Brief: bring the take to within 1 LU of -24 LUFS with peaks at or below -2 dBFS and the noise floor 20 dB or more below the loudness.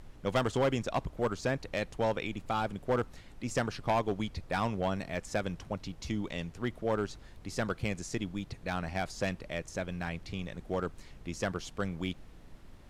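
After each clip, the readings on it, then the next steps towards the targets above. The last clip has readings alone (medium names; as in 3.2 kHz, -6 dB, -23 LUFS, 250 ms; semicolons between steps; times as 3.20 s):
clipped samples 0.7%; clipping level -22.5 dBFS; noise floor -53 dBFS; noise floor target -55 dBFS; loudness -35.0 LUFS; peak level -22.5 dBFS; loudness target -24.0 LUFS
-> clip repair -22.5 dBFS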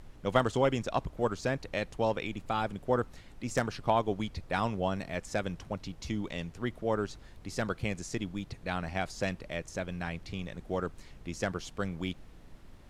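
clipped samples 0.0%; noise floor -53 dBFS; noise floor target -54 dBFS
-> noise print and reduce 6 dB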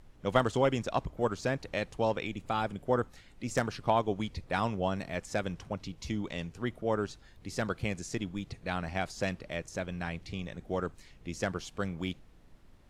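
noise floor -57 dBFS; loudness -34.0 LUFS; peak level -13.5 dBFS; loudness target -24.0 LUFS
-> trim +10 dB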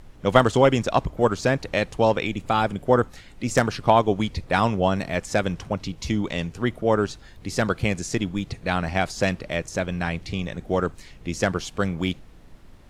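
loudness -24.0 LUFS; peak level -3.5 dBFS; noise floor -47 dBFS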